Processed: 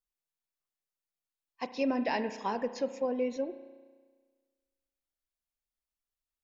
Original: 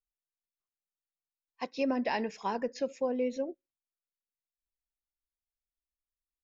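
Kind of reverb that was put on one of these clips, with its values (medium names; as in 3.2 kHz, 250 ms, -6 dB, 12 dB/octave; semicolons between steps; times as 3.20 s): spring tank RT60 1.5 s, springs 33 ms, chirp 75 ms, DRR 10.5 dB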